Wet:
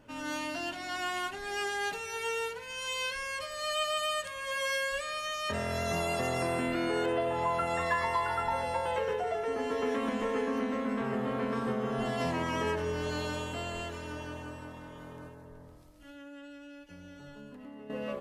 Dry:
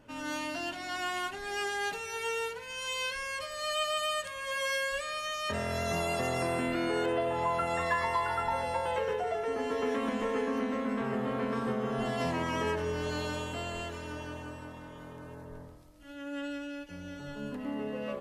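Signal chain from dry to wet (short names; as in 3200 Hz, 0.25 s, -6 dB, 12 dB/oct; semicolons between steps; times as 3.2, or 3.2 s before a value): 15.27–17.9 compressor 4:1, threshold -47 dBFS, peak gain reduction 12.5 dB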